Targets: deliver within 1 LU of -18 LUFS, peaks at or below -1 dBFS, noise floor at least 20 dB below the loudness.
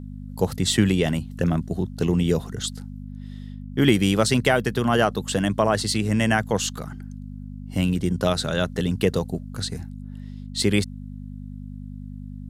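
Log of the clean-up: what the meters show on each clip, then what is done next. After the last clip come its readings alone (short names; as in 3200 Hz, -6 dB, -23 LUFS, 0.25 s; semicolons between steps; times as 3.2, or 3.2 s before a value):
hum 50 Hz; harmonics up to 250 Hz; hum level -33 dBFS; loudness -23.0 LUFS; peak -5.0 dBFS; loudness target -18.0 LUFS
-> de-hum 50 Hz, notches 5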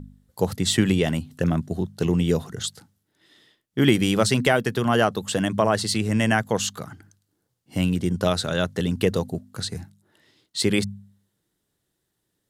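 hum none; loudness -23.5 LUFS; peak -5.0 dBFS; loudness target -18.0 LUFS
-> gain +5.5 dB; limiter -1 dBFS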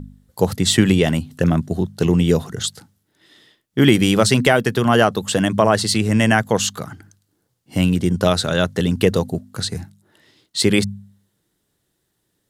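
loudness -18.0 LUFS; peak -1.0 dBFS; noise floor -71 dBFS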